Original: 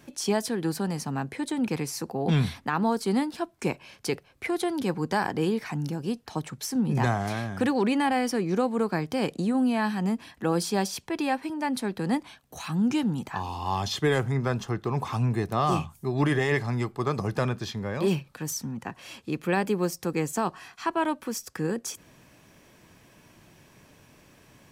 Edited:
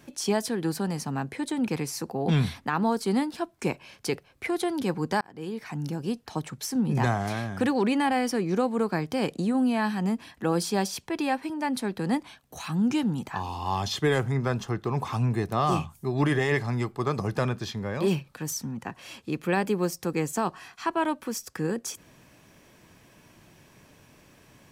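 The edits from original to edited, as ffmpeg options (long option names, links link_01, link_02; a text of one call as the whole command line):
ffmpeg -i in.wav -filter_complex "[0:a]asplit=2[link_01][link_02];[link_01]atrim=end=5.21,asetpts=PTS-STARTPTS,afade=type=out:start_time=5.206:duration=0.004:curve=hsin[link_03];[link_02]atrim=start=5.21,asetpts=PTS-STARTPTS,afade=type=in:duration=0.74[link_04];[link_03][link_04]concat=n=2:v=0:a=1" out.wav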